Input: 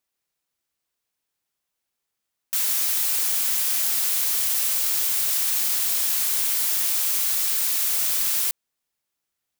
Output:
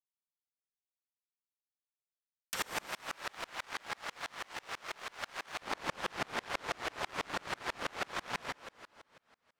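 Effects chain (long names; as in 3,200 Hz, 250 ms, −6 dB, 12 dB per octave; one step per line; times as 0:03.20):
high-shelf EQ 5,700 Hz −7.5 dB
treble cut that deepens with the level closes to 1,300 Hz, closed at −28.5 dBFS
leveller curve on the samples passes 2
0:02.86–0:05.62: high-pass filter 860 Hz 6 dB per octave
power curve on the samples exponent 2
dense smooth reverb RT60 2.2 s, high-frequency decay 1×, DRR 6 dB
tremolo with a ramp in dB swelling 6.1 Hz, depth 33 dB
level +18 dB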